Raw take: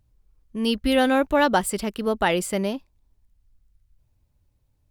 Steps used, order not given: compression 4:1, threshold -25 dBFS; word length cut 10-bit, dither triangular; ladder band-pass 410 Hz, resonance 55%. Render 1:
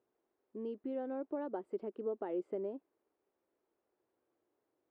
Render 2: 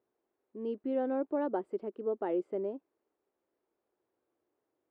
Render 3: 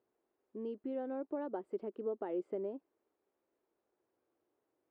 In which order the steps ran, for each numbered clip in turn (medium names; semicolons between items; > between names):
compression > word length cut > ladder band-pass; word length cut > ladder band-pass > compression; word length cut > compression > ladder band-pass